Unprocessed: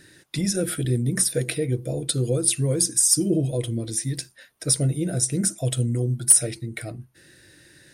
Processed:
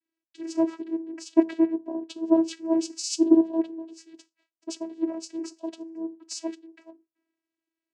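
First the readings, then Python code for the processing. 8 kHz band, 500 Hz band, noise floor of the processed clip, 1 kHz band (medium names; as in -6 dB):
-19.0 dB, -1.5 dB, under -85 dBFS, +5.5 dB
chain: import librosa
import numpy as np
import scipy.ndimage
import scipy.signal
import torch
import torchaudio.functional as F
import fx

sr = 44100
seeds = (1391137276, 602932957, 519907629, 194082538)

y = fx.peak_eq(x, sr, hz=570.0, db=5.5, octaves=0.51)
y = fx.vocoder(y, sr, bands=8, carrier='saw', carrier_hz=326.0)
y = fx.band_widen(y, sr, depth_pct=100)
y = y * 10.0 ** (-5.0 / 20.0)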